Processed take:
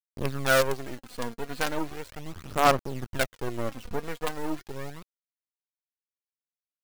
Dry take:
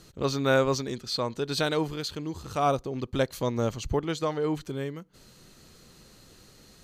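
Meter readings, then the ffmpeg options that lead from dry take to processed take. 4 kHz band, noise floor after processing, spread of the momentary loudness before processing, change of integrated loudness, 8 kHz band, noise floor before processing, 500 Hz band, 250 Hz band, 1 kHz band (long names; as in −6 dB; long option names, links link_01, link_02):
−2.5 dB, below −85 dBFS, 10 LU, −0.5 dB, +1.5 dB, −55 dBFS, −2.5 dB, −4.5 dB, +2.0 dB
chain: -af "lowpass=frequency=1900:width_type=q:width=1.7,acrusher=bits=4:dc=4:mix=0:aa=0.000001,aphaser=in_gain=1:out_gain=1:delay=4.3:decay=0.5:speed=0.37:type=sinusoidal,volume=-3dB"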